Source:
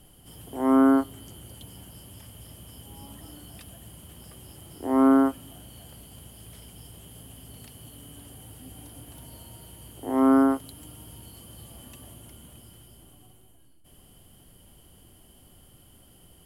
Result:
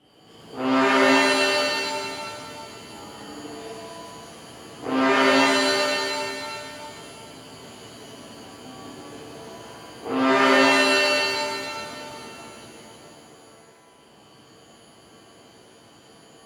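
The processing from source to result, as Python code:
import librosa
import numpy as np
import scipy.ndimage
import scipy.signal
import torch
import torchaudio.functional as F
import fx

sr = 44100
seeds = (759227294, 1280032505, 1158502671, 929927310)

y = fx.cheby_harmonics(x, sr, harmonics=(8,), levels_db=(-13,), full_scale_db=-11.0)
y = np.clip(y, -10.0 ** (-21.5 / 20.0), 10.0 ** (-21.5 / 20.0))
y = fx.bandpass_edges(y, sr, low_hz=200.0, high_hz=3700.0)
y = fx.rev_shimmer(y, sr, seeds[0], rt60_s=2.2, semitones=7, shimmer_db=-2, drr_db=-9.5)
y = F.gain(torch.from_numpy(y), -2.5).numpy()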